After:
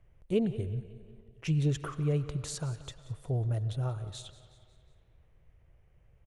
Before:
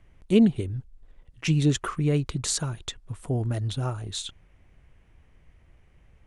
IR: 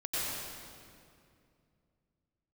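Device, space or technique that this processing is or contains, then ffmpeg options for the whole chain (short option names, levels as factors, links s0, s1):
filtered reverb send: -filter_complex "[0:a]equalizer=f=125:t=o:w=1:g=5,equalizer=f=250:t=o:w=1:g=-9,equalizer=f=500:t=o:w=1:g=4,equalizer=f=1000:t=o:w=1:g=-3,equalizer=f=2000:t=o:w=1:g=-4,equalizer=f=4000:t=o:w=1:g=-5,equalizer=f=8000:t=o:w=1:g=-6,aecho=1:1:182|364|546|728:0.133|0.068|0.0347|0.0177,asplit=2[s0][s1];[s1]highpass=410,lowpass=4500[s2];[1:a]atrim=start_sample=2205[s3];[s2][s3]afir=irnorm=-1:irlink=0,volume=0.1[s4];[s0][s4]amix=inputs=2:normalize=0,volume=0.501"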